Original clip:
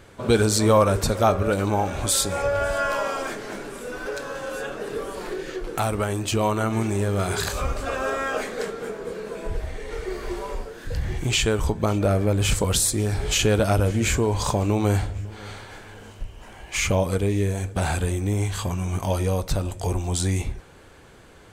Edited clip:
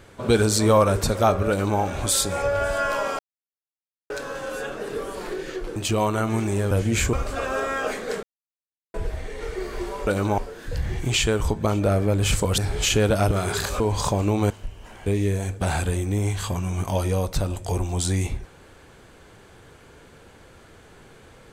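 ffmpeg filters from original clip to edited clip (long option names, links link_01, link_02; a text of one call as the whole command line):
ffmpeg -i in.wav -filter_complex "[0:a]asplit=15[link_01][link_02][link_03][link_04][link_05][link_06][link_07][link_08][link_09][link_10][link_11][link_12][link_13][link_14][link_15];[link_01]atrim=end=3.19,asetpts=PTS-STARTPTS,afade=type=out:start_time=3.186:duration=0.004:curve=hsin[link_16];[link_02]atrim=start=3.19:end=4.1,asetpts=PTS-STARTPTS,volume=0[link_17];[link_03]atrim=start=4.1:end=5.762,asetpts=PTS-STARTPTS,afade=type=in:duration=0.004:curve=hsin[link_18];[link_04]atrim=start=6.188:end=7.142[link_19];[link_05]atrim=start=13.798:end=14.222[link_20];[link_06]atrim=start=7.628:end=8.73,asetpts=PTS-STARTPTS,afade=type=out:start_time=1.098:duration=0.004:curve=hsin[link_21];[link_07]atrim=start=8.73:end=9.44,asetpts=PTS-STARTPTS,volume=0[link_22];[link_08]atrim=start=9.44:end=10.572,asetpts=PTS-STARTPTS,afade=type=in:duration=0.004:curve=hsin[link_23];[link_09]atrim=start=1.488:end=1.802[link_24];[link_10]atrim=start=10.568:end=12.772[link_25];[link_11]atrim=start=13.068:end=13.802[link_26];[link_12]atrim=start=7.138:end=7.632[link_27];[link_13]atrim=start=14.218:end=14.922[link_28];[link_14]atrim=start=16.068:end=16.632[link_29];[link_15]atrim=start=17.208[link_30];[link_16][link_17][link_18]concat=n=3:v=0:a=1[link_31];[link_31][link_19]acrossfade=duration=0.004:curve1=hsin:curve2=hsin[link_32];[link_32][link_20]acrossfade=duration=0.004:curve1=hsin:curve2=hsin[link_33];[link_21][link_22][link_23]concat=n=3:v=0:a=1[link_34];[link_33][link_34]acrossfade=duration=0.004:curve1=hsin:curve2=hsin[link_35];[link_35][link_24]acrossfade=duration=0.004:curve1=hsin:curve2=hsin[link_36];[link_36][link_25]acrossfade=duration=0.004:curve1=hsin:curve2=hsin[link_37];[link_37][link_26]acrossfade=duration=0.004:curve1=hsin:curve2=hsin[link_38];[link_38][link_27]acrossfade=duration=0.004:curve1=hsin:curve2=hsin[link_39];[link_39][link_28]acrossfade=duration=0.004:curve1=hsin:curve2=hsin[link_40];[link_40][link_29]acrossfade=duration=0.004:curve1=hsin:curve2=hsin[link_41];[link_41][link_30]acrossfade=duration=0.004:curve1=hsin:curve2=hsin" out.wav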